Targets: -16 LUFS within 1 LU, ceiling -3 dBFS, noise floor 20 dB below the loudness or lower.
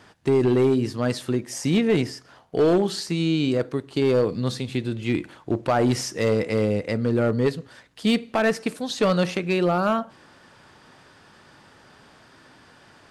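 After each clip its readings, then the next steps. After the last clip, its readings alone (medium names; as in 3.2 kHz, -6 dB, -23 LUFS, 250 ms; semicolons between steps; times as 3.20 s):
clipped samples 0.9%; clipping level -13.5 dBFS; loudness -23.5 LUFS; peak level -13.5 dBFS; loudness target -16.0 LUFS
-> clip repair -13.5 dBFS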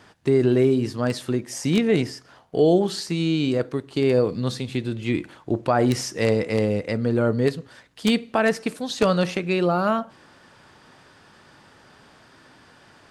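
clipped samples 0.0%; loudness -22.5 LUFS; peak level -4.5 dBFS; loudness target -16.0 LUFS
-> trim +6.5 dB; peak limiter -3 dBFS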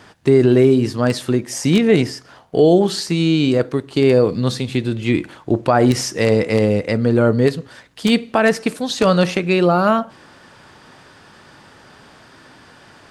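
loudness -16.5 LUFS; peak level -3.0 dBFS; noise floor -47 dBFS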